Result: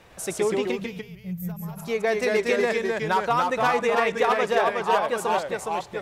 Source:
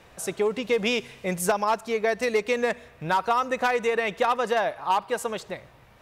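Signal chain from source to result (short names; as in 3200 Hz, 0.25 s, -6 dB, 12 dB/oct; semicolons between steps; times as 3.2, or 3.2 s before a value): spectral gain 0.71–1.77, 210–12000 Hz -23 dB; echoes that change speed 0.104 s, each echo -1 st, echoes 2; SBC 192 kbps 48000 Hz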